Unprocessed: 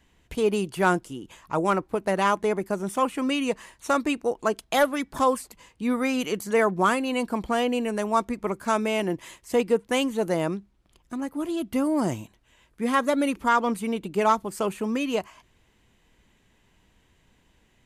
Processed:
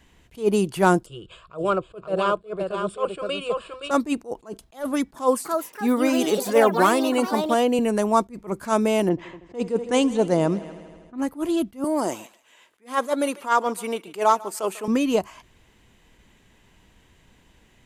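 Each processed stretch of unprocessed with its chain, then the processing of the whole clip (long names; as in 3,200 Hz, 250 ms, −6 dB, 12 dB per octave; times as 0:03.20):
0:01.06–0:03.91: Butterworth low-pass 8,500 Hz 48 dB per octave + phaser with its sweep stopped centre 1,300 Hz, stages 8 + single-tap delay 520 ms −7 dB
0:05.15–0:07.79: high-pass filter 220 Hz + delay with pitch and tempo change per echo 298 ms, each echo +4 semitones, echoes 3, each echo −6 dB
0:09.09–0:11.18: low-pass filter 9,000 Hz 24 dB per octave + low-pass that shuts in the quiet parts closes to 660 Hz, open at −21.5 dBFS + echo machine with several playback heads 80 ms, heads all three, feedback 53%, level −24 dB
0:11.84–0:14.88: high-pass filter 430 Hz + feedback echo with a high-pass in the loop 146 ms, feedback 21%, high-pass 690 Hz, level −19 dB
whole clip: dynamic equaliser 2,100 Hz, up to −8 dB, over −40 dBFS, Q 0.83; level that may rise only so fast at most 250 dB per second; level +6 dB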